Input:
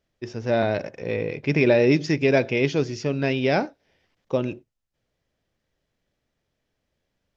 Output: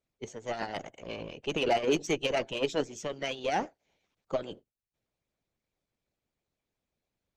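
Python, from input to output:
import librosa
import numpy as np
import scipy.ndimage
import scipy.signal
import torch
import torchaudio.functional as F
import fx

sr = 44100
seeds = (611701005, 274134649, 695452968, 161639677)

y = fx.formant_shift(x, sr, semitones=3)
y = fx.cheby_harmonics(y, sr, harmonics=(8,), levels_db=(-27,), full_scale_db=-6.5)
y = fx.hpss(y, sr, part='harmonic', gain_db=-17)
y = y * 10.0 ** (-4.5 / 20.0)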